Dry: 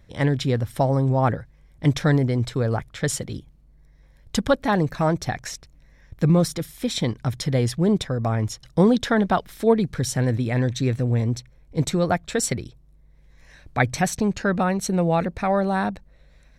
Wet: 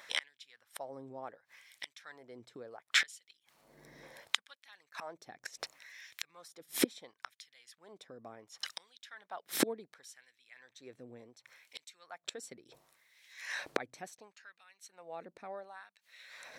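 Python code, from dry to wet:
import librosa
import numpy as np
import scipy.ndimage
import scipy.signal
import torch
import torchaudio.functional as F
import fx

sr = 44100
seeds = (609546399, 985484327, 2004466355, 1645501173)

y = fx.gate_flip(x, sr, shuts_db=-22.0, range_db=-35)
y = fx.filter_lfo_highpass(y, sr, shape='sine', hz=0.7, low_hz=300.0, high_hz=2700.0, q=1.2)
y = F.gain(torch.from_numpy(y), 11.0).numpy()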